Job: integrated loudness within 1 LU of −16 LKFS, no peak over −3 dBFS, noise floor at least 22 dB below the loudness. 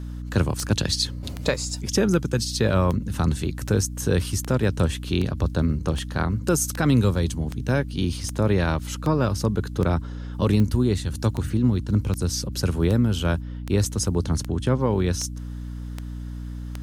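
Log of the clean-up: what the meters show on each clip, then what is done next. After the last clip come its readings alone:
number of clicks 22; mains hum 60 Hz; hum harmonics up to 300 Hz; level of the hum −30 dBFS; integrated loudness −24.0 LKFS; sample peak −7.5 dBFS; target loudness −16.0 LKFS
→ click removal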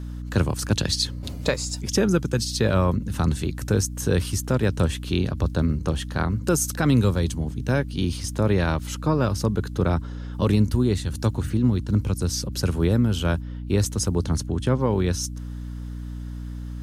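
number of clicks 0; mains hum 60 Hz; hum harmonics up to 300 Hz; level of the hum −30 dBFS
→ mains-hum notches 60/120/180/240/300 Hz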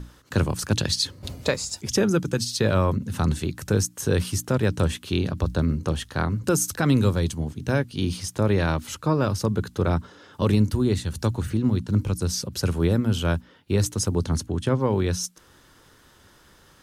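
mains hum none found; integrated loudness −24.5 LKFS; sample peak −7.5 dBFS; target loudness −16.0 LKFS
→ level +8.5 dB
brickwall limiter −3 dBFS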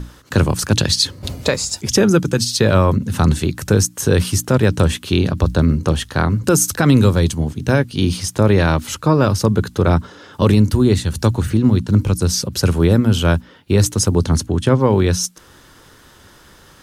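integrated loudness −16.5 LKFS; sample peak −3.0 dBFS; background noise floor −47 dBFS

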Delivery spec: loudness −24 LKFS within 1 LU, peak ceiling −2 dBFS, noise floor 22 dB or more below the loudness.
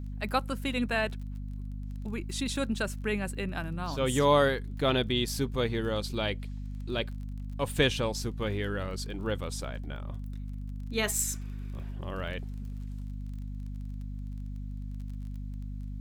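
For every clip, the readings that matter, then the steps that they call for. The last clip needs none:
crackle rate 23 per second; mains hum 50 Hz; hum harmonics up to 250 Hz; level of the hum −35 dBFS; integrated loudness −32.5 LKFS; sample peak −11.0 dBFS; target loudness −24.0 LKFS
→ click removal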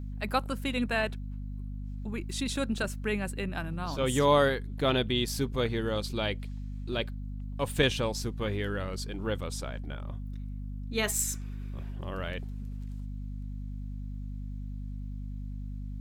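crackle rate 0.31 per second; mains hum 50 Hz; hum harmonics up to 250 Hz; level of the hum −35 dBFS
→ mains-hum notches 50/100/150/200/250 Hz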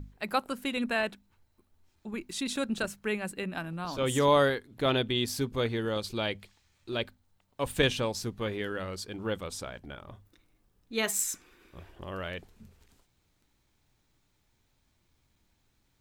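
mains hum none found; integrated loudness −31.0 LKFS; sample peak −11.5 dBFS; target loudness −24.0 LKFS
→ level +7 dB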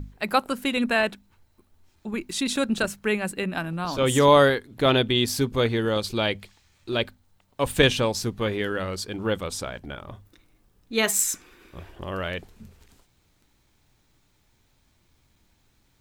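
integrated loudness −24.5 LKFS; sample peak −4.5 dBFS; background noise floor −66 dBFS

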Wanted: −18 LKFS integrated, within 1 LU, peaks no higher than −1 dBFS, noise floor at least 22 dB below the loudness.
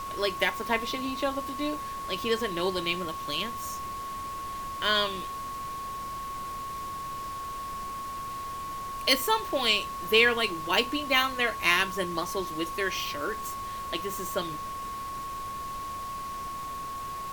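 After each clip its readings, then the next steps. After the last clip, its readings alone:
interfering tone 1,100 Hz; level of the tone −34 dBFS; background noise floor −37 dBFS; target noise floor −52 dBFS; integrated loudness −29.5 LKFS; sample peak −8.5 dBFS; target loudness −18.0 LKFS
→ notch filter 1,100 Hz, Q 30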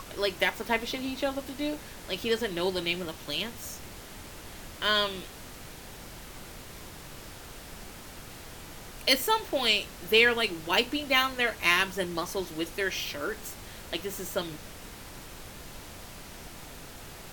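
interfering tone none found; background noise floor −46 dBFS; target noise floor −50 dBFS
→ noise reduction from a noise print 6 dB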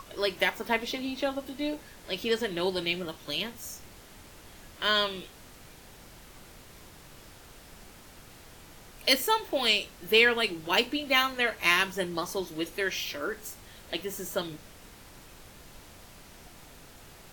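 background noise floor −51 dBFS; integrated loudness −28.0 LKFS; sample peak −9.0 dBFS; target loudness −18.0 LKFS
→ level +10 dB
brickwall limiter −1 dBFS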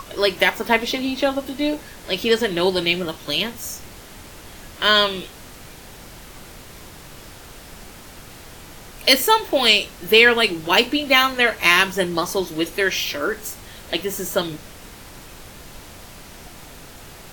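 integrated loudness −18.5 LKFS; sample peak −1.0 dBFS; background noise floor −41 dBFS

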